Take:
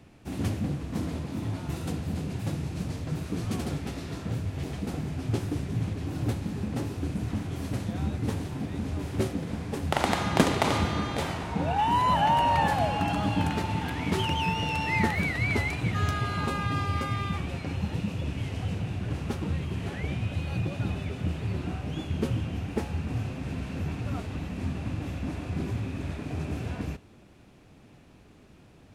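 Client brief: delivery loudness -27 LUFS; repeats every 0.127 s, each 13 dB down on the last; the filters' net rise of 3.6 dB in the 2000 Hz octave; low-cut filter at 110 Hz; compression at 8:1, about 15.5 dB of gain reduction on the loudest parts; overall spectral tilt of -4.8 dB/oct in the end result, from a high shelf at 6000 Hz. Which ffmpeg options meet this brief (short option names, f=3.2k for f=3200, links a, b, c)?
-af "highpass=110,equalizer=f=2k:t=o:g=3.5,highshelf=f=6k:g=6.5,acompressor=threshold=-32dB:ratio=8,aecho=1:1:127|254|381:0.224|0.0493|0.0108,volume=9.5dB"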